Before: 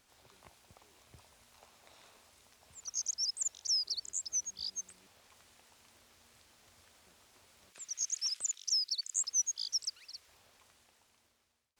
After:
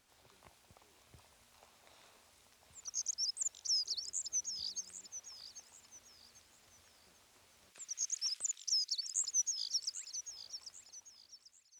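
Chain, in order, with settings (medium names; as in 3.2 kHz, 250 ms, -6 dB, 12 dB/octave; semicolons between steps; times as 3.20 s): feedback echo behind a high-pass 792 ms, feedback 32%, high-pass 1.4 kHz, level -11 dB; trim -2.5 dB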